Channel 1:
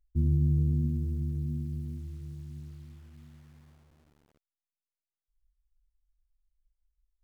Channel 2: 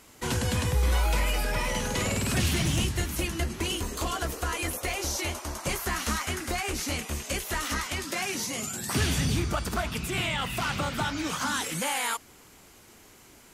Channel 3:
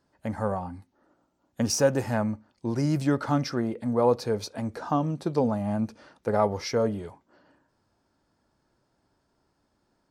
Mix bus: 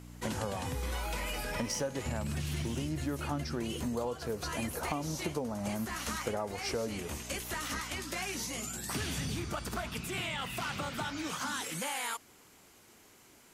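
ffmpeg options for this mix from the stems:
-filter_complex "[0:a]lowshelf=f=61:g=9.5,adelay=1900,volume=-3dB[a];[1:a]volume=-5.5dB[b];[2:a]aeval=exprs='val(0)+0.00708*(sin(2*PI*60*n/s)+sin(2*PI*2*60*n/s)/2+sin(2*PI*3*60*n/s)/3+sin(2*PI*4*60*n/s)/4+sin(2*PI*5*60*n/s)/5)':c=same,volume=-1dB[c];[a][b][c]amix=inputs=3:normalize=0,lowshelf=f=64:g=-10.5,acompressor=threshold=-31dB:ratio=12"

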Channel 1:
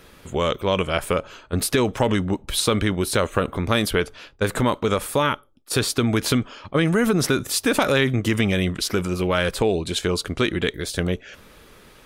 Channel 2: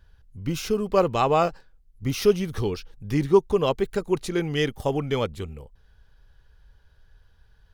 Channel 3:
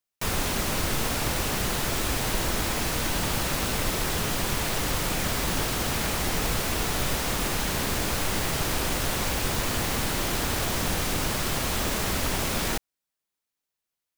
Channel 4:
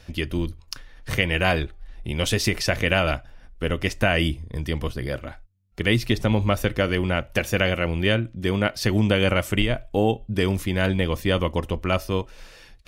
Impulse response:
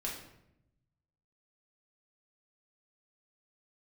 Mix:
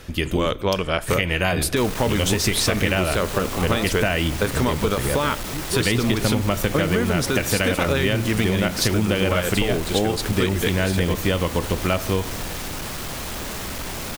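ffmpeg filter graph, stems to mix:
-filter_complex "[0:a]tremolo=f=4.3:d=0.33,volume=2dB,asplit=2[a][b];[b]volume=-21dB[c];[1:a]adelay=2400,volume=-10dB[d];[2:a]asoftclip=type=tanh:threshold=-27dB,adelay=1550,volume=1dB[e];[3:a]aexciter=amount=1.1:drive=8.4:freq=6.6k,volume=3dB,asplit=2[f][g];[g]volume=-14dB[h];[4:a]atrim=start_sample=2205[i];[c][h]amix=inputs=2:normalize=0[j];[j][i]afir=irnorm=-1:irlink=0[k];[a][d][e][f][k]amix=inputs=5:normalize=0,acompressor=threshold=-16dB:ratio=6"

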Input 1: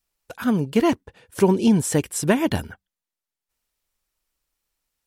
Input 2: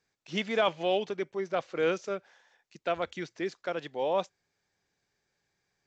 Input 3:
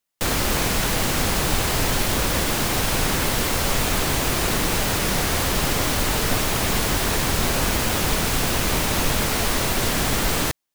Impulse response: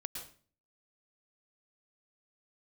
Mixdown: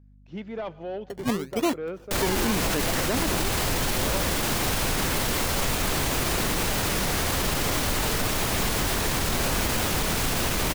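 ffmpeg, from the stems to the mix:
-filter_complex "[0:a]highpass=270,acrusher=samples=24:mix=1:aa=0.000001:lfo=1:lforange=24:lforate=0.79,adelay=800,volume=-1.5dB[a];[1:a]lowpass=f=1.1k:p=1,lowshelf=f=270:g=7,asoftclip=type=tanh:threshold=-21dB,volume=-5.5dB,asplit=3[b][c][d];[c]volume=-16dB[e];[2:a]adelay=1900,volume=-2.5dB[f];[d]apad=whole_len=258471[g];[a][g]sidechaincompress=threshold=-38dB:ratio=8:attack=16:release=110[h];[3:a]atrim=start_sample=2205[i];[e][i]afir=irnorm=-1:irlink=0[j];[h][b][f][j]amix=inputs=4:normalize=0,aeval=exprs='val(0)+0.00251*(sin(2*PI*50*n/s)+sin(2*PI*2*50*n/s)/2+sin(2*PI*3*50*n/s)/3+sin(2*PI*4*50*n/s)/4+sin(2*PI*5*50*n/s)/5)':c=same,alimiter=limit=-15.5dB:level=0:latency=1:release=18"

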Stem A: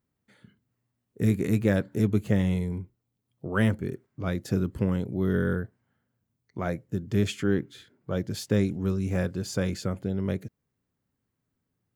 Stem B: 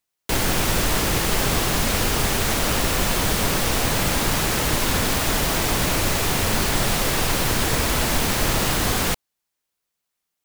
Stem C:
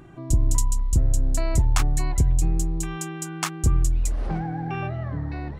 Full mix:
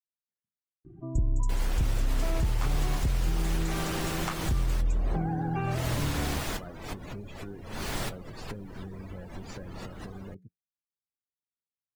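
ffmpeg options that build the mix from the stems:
-filter_complex "[0:a]flanger=delay=7.9:depth=1.3:regen=-82:speed=0.4:shape=triangular,acompressor=threshold=-36dB:ratio=3,volume=-5dB,afade=t=in:st=4.58:d=0.47:silence=0.223872,asplit=2[a][b];[1:a]adelay=1200,volume=-10.5dB[c];[2:a]lowpass=f=1.7k:p=1,adelay=850,volume=-1dB[d];[b]apad=whole_len=513428[e];[c][e]sidechaincompress=threshold=-51dB:ratio=16:attack=45:release=319[f];[a][f][d]amix=inputs=3:normalize=0,afftdn=nr=24:nf=-43,alimiter=limit=-18.5dB:level=0:latency=1:release=169"

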